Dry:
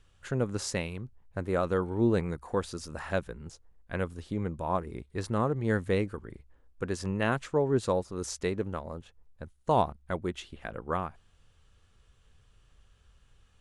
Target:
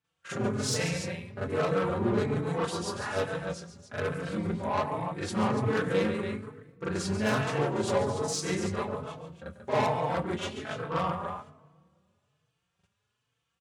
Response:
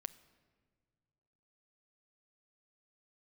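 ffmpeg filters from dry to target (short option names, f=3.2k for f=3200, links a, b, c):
-filter_complex "[0:a]lowpass=f=3.9k:p=1,asplit=2[a][b];[b]adelay=23,volume=-9.5dB[c];[a][c]amix=inputs=2:normalize=0,asplit=2[d][e];[e]asetrate=37084,aresample=44100,atempo=1.18921,volume=-4dB[f];[d][f]amix=inputs=2:normalize=0,aecho=1:1:140|286:0.335|0.335,agate=range=-16dB:threshold=-49dB:ratio=16:detection=peak,equalizer=f=320:t=o:w=0.51:g=-6,asoftclip=type=tanh:threshold=-26dB,highpass=f=100:w=0.5412,highpass=f=100:w=1.3066,lowshelf=f=150:g=-3,asplit=2[g][h];[1:a]atrim=start_sample=2205,highshelf=f=5.3k:g=10,adelay=42[i];[h][i]afir=irnorm=-1:irlink=0,volume=8.5dB[j];[g][j]amix=inputs=2:normalize=0,asplit=2[k][l];[l]adelay=4.1,afreqshift=1.2[m];[k][m]amix=inputs=2:normalize=1,volume=1dB"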